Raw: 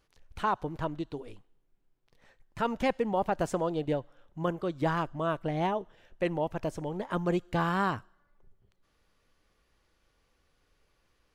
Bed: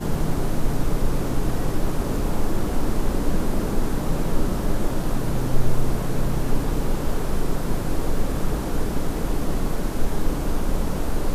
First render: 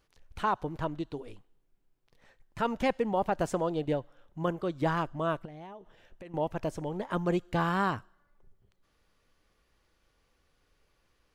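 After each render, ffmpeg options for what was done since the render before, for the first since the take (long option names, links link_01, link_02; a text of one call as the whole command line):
ffmpeg -i in.wav -filter_complex "[0:a]asettb=1/sr,asplit=3[link_01][link_02][link_03];[link_01]atrim=end=5.454[link_04];[link_02]atrim=start=5.45:end=6.34,asetpts=PTS-STARTPTS,afade=type=in:duration=0.004:curve=qsin,afade=type=out:start_time=0.886:duration=0.004:curve=qsin,acompressor=threshold=-44dB:ratio=6:attack=3.2:release=140:knee=1:detection=peak[link_05];[link_03]atrim=start=6.336[link_06];[link_04][link_05]acrossfade=duration=0.004:curve1=hsin:curve2=qsin[link_07];[link_07][link_06]acrossfade=duration=0.004:curve1=qsin:curve2=hsin" out.wav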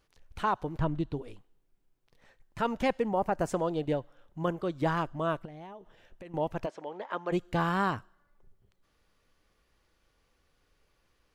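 ffmpeg -i in.wav -filter_complex "[0:a]asettb=1/sr,asplit=3[link_01][link_02][link_03];[link_01]atrim=end=0.794[link_04];[link_02]atrim=start=0.79:end=1.22,asetpts=PTS-STARTPTS,afade=type=in:duration=0.004:curve=qsin,afade=type=out:start_time=0.426:duration=0.004:curve=qsin,bass=frequency=250:gain=9,treble=frequency=4000:gain=-5[link_05];[link_03]atrim=start=1.216[link_06];[link_04][link_05]acrossfade=duration=0.004:curve1=hsin:curve2=qsin[link_07];[link_07][link_06]acrossfade=duration=0.004:curve1=qsin:curve2=hsin,asettb=1/sr,asplit=3[link_08][link_09][link_10];[link_08]atrim=end=3.084[link_11];[link_09]atrim=start=3.08:end=3.49,asetpts=PTS-STARTPTS,afade=type=in:duration=0.004:curve=qsin,afade=type=out:start_time=0.406:duration=0.004:curve=qsin,equalizer=frequency=3500:width_type=o:width=0.59:gain=-10.5[link_12];[link_10]atrim=start=3.486[link_13];[link_11][link_12]acrossfade=duration=0.004:curve1=hsin:curve2=qsin[link_14];[link_14][link_13]acrossfade=duration=0.004:curve1=qsin:curve2=hsin,asplit=3[link_15][link_16][link_17];[link_15]afade=type=out:start_time=6.65:duration=0.02[link_18];[link_16]highpass=490,lowpass=3800,afade=type=in:start_time=6.65:duration=0.02,afade=type=out:start_time=7.31:duration=0.02[link_19];[link_17]afade=type=in:start_time=7.31:duration=0.02[link_20];[link_18][link_19][link_20]amix=inputs=3:normalize=0" out.wav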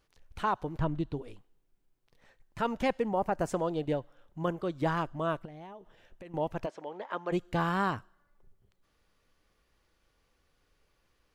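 ffmpeg -i in.wav -af "volume=-1dB" out.wav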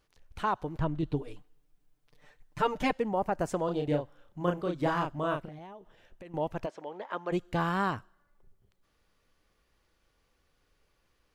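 ffmpeg -i in.wav -filter_complex "[0:a]asettb=1/sr,asplit=3[link_01][link_02][link_03];[link_01]atrim=end=1.024[link_04];[link_02]atrim=start=1.02:end=2.93,asetpts=PTS-STARTPTS,afade=type=in:duration=0.004:curve=qsin,afade=type=out:start_time=1.906:duration=0.004:curve=qsin,aecho=1:1:6.7:0.96,atrim=end_sample=84231[link_05];[link_03]atrim=start=2.926[link_06];[link_04][link_05]acrossfade=duration=0.004:curve1=hsin:curve2=qsin[link_07];[link_07][link_06]acrossfade=duration=0.004:curve1=qsin:curve2=hsin,asettb=1/sr,asplit=3[link_08][link_09][link_10];[link_08]atrim=end=3.654[link_11];[link_09]atrim=start=3.65:end=5.59,asetpts=PTS-STARTPTS,afade=type=in:duration=0.004:curve=qsin,afade=type=out:start_time=1.936:duration=0.004:curve=qsin,asplit=2[link_12][link_13];[link_13]adelay=34,volume=-3.5dB[link_14];[link_12][link_14]amix=inputs=2:normalize=0,atrim=end_sample=85554[link_15];[link_10]atrim=start=5.586[link_16];[link_11][link_15]acrossfade=duration=0.004:curve1=hsin:curve2=qsin[link_17];[link_17][link_16]acrossfade=duration=0.004:curve1=qsin:curve2=hsin" out.wav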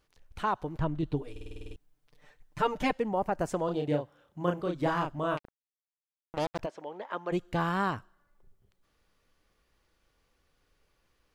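ffmpeg -i in.wav -filter_complex "[0:a]asettb=1/sr,asplit=3[link_01][link_02][link_03];[link_01]atrim=end=3.764[link_04];[link_02]atrim=start=3.76:end=4.6,asetpts=PTS-STARTPTS,afade=type=in:duration=0.004:curve=qsin,afade=type=out:start_time=0.836:duration=0.004:curve=qsin,highpass=77[link_05];[link_03]atrim=start=4.596[link_06];[link_04][link_05]acrossfade=duration=0.004:curve1=hsin:curve2=qsin[link_07];[link_07][link_06]acrossfade=duration=0.004:curve1=qsin:curve2=hsin,asettb=1/sr,asplit=3[link_08][link_09][link_10];[link_08]atrim=end=5.374[link_11];[link_09]atrim=start=5.37:end=6.59,asetpts=PTS-STARTPTS,afade=type=in:duration=0.004:curve=qsin,afade=type=out:start_time=1.216:duration=0.004:curve=qsin,acrusher=bits=4:mix=0:aa=0.5[link_12];[link_10]atrim=start=6.586[link_13];[link_11][link_12]acrossfade=duration=0.004:curve1=hsin:curve2=qsin[link_14];[link_14][link_13]acrossfade=duration=0.004:curve1=qsin:curve2=hsin,asplit=10[link_15][link_16][link_17][link_18][link_19][link_20][link_21][link_22][link_23][link_24];[link_15]atrim=end=1.362[link_25];[link_16]atrim=start=1.308:end=1.362[link_26];[link_17]atrim=start=1.308:end=1.362[link_27];[link_18]atrim=start=1.308:end=1.362[link_28];[link_19]atrim=start=1.308:end=1.362[link_29];[link_20]atrim=start=1.308:end=1.362[link_30];[link_21]atrim=start=1.308:end=1.362[link_31];[link_22]atrim=start=1.308:end=1.362[link_32];[link_23]atrim=start=1.308:end=1.362[link_33];[link_24]atrim=start=1.758[link_34];[link_25][link_26]acrossfade=duration=0.004:curve1=hsin:curve2=hsin[link_35];[link_35][link_27]acrossfade=duration=0.004:curve1=hsin:curve2=hsin[link_36];[link_36][link_28]acrossfade=duration=0.004:curve1=hsin:curve2=hsin[link_37];[link_37][link_29]acrossfade=duration=0.004:curve1=hsin:curve2=hsin[link_38];[link_38][link_30]acrossfade=duration=0.004:curve1=hsin:curve2=hsin[link_39];[link_39][link_31]acrossfade=duration=0.004:curve1=hsin:curve2=hsin[link_40];[link_40][link_32]acrossfade=duration=0.004:curve1=hsin:curve2=hsin[link_41];[link_41][link_33]acrossfade=duration=0.004:curve1=hsin:curve2=hsin[link_42];[link_42][link_34]acrossfade=duration=0.004:curve1=hsin:curve2=hsin" out.wav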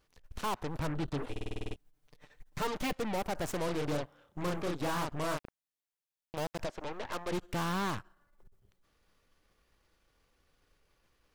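ffmpeg -i in.wav -af "asoftclip=type=tanh:threshold=-29.5dB,aeval=exprs='0.0335*(cos(1*acos(clip(val(0)/0.0335,-1,1)))-cos(1*PI/2))+0.00841*(cos(8*acos(clip(val(0)/0.0335,-1,1)))-cos(8*PI/2))':channel_layout=same" out.wav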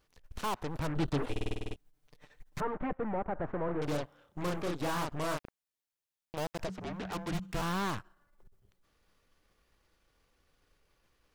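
ffmpeg -i in.wav -filter_complex "[0:a]asettb=1/sr,asplit=3[link_01][link_02][link_03];[link_01]atrim=end=2.604[link_04];[link_02]atrim=start=2.6:end=3.82,asetpts=PTS-STARTPTS,afade=type=in:duration=0.004:curve=qsin,afade=type=out:start_time=1.216:duration=0.004:curve=qsin,lowpass=frequency=1700:width=0.5412,lowpass=frequency=1700:width=1.3066[link_05];[link_03]atrim=start=3.816[link_06];[link_04][link_05]acrossfade=duration=0.004:curve1=hsin:curve2=qsin[link_07];[link_07][link_06]acrossfade=duration=0.004:curve1=qsin:curve2=hsin,asplit=3[link_08][link_09][link_10];[link_08]afade=type=out:start_time=6.67:duration=0.02[link_11];[link_09]afreqshift=-190,afade=type=in:start_time=6.67:duration=0.02,afade=type=out:start_time=7.61:duration=0.02[link_12];[link_10]afade=type=in:start_time=7.61:duration=0.02[link_13];[link_11][link_12][link_13]amix=inputs=3:normalize=0,asplit=3[link_14][link_15][link_16];[link_14]atrim=end=0.962[link_17];[link_15]atrim=start=0.958:end=1.552,asetpts=PTS-STARTPTS,volume=4dB[link_18];[link_16]atrim=start=1.548[link_19];[link_17][link_18]acrossfade=duration=0.004:curve1=hsin:curve2=hsin[link_20];[link_20][link_19]acrossfade=duration=0.004:curve1=hsin:curve2=hsin" out.wav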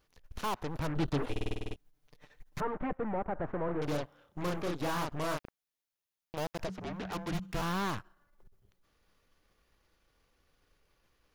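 ffmpeg -i in.wav -af "equalizer=frequency=8100:width=7.4:gain=-7.5" out.wav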